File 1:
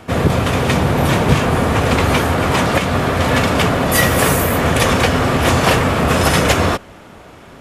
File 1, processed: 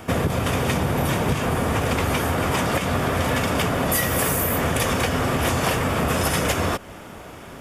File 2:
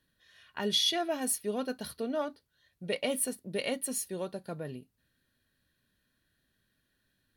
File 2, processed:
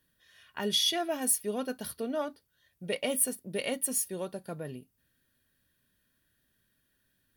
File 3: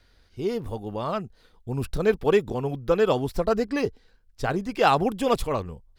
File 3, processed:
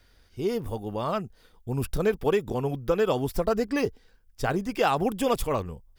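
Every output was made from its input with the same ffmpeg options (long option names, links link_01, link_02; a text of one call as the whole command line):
ffmpeg -i in.wav -af "highshelf=frequency=11000:gain=11.5,bandreject=frequency=4100:width=11,acompressor=threshold=-19dB:ratio=6" out.wav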